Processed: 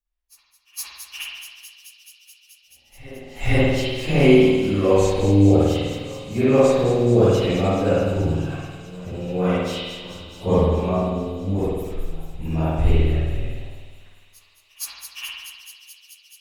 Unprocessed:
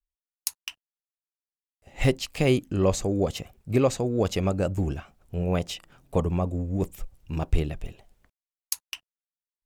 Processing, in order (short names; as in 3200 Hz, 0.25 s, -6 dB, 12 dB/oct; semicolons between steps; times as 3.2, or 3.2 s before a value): pre-echo 0.274 s -21 dB; plain phase-vocoder stretch 1.7×; on a send: thin delay 0.215 s, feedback 82%, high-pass 4100 Hz, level -7.5 dB; on the sum: spring tank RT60 1.4 s, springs 50 ms, chirp 25 ms, DRR -9 dB